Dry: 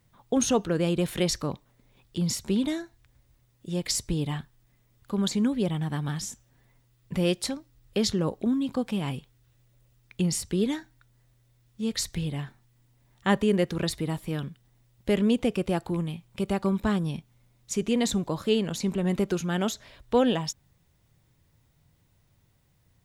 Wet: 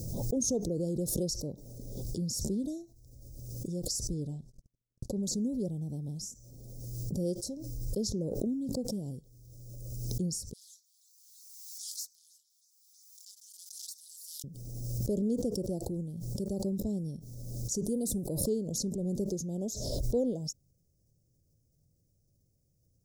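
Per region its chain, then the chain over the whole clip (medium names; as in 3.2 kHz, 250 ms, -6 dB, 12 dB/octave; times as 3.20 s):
4.14–5.23 s: gate -58 dBFS, range -59 dB + low-pass 8.9 kHz
10.53–14.44 s: comb filter that takes the minimum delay 4.8 ms + inverse Chebyshev high-pass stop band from 460 Hz, stop band 80 dB + modulated delay 323 ms, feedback 47%, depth 117 cents, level -23.5 dB
17.85–18.44 s: resonant high shelf 8 kHz +7 dB, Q 3 + de-esser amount 50%
whole clip: elliptic band-stop 560–5400 Hz, stop band 50 dB; peaking EQ 5.7 kHz +2.5 dB 0.77 oct; swell ahead of each attack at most 30 dB/s; trim -7 dB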